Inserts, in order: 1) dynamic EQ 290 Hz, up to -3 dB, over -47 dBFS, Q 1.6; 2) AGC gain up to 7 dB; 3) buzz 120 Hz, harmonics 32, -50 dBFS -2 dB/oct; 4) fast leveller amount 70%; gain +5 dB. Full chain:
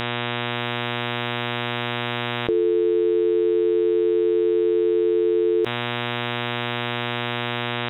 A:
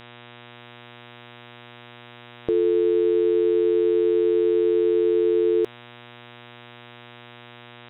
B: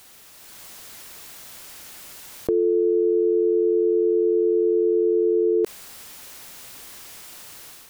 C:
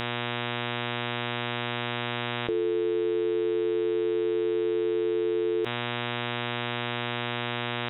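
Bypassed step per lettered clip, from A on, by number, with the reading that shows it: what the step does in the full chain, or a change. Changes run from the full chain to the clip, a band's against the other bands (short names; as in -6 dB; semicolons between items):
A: 4, momentary loudness spread change -2 LU; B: 3, momentary loudness spread change +14 LU; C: 2, momentary loudness spread change -2 LU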